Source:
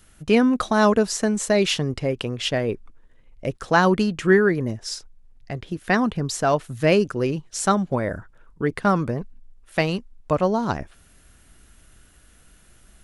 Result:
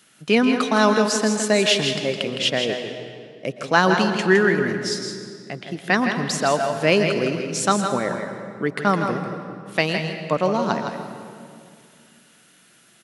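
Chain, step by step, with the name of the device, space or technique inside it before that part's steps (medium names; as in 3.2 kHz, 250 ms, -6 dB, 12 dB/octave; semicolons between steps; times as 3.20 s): PA in a hall (high-pass 150 Hz 24 dB/octave; peaking EQ 3.4 kHz +6 dB 2.1 oct; delay 162 ms -7 dB; reverberation RT60 2.3 s, pre-delay 111 ms, DRR 8 dB); trim -1 dB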